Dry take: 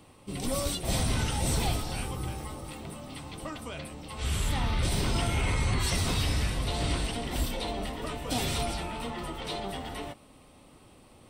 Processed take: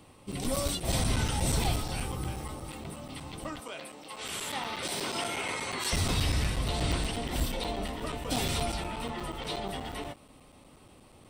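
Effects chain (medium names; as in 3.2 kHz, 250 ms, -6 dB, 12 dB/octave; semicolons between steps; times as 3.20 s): 3.60–5.93 s: high-pass 340 Hz 12 dB/octave; crackling interface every 0.12 s, samples 256, zero, from 0.32 s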